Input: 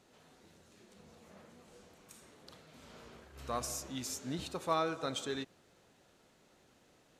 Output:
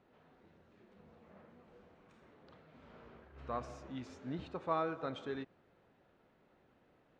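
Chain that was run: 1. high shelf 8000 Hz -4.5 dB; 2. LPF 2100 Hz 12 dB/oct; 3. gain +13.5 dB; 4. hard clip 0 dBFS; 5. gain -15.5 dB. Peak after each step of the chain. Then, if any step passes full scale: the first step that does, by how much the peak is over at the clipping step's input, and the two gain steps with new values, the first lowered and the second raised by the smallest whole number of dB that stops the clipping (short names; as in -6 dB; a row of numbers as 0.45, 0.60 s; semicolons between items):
-19.5, -19.5, -6.0, -6.0, -21.5 dBFS; no overload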